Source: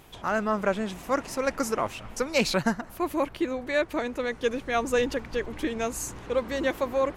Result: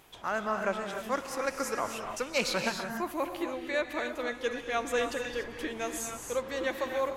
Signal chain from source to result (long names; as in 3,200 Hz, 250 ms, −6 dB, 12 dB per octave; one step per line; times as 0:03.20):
low-shelf EQ 330 Hz −9 dB
reverb whose tail is shaped and stops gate 320 ms rising, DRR 4.5 dB
level −3.5 dB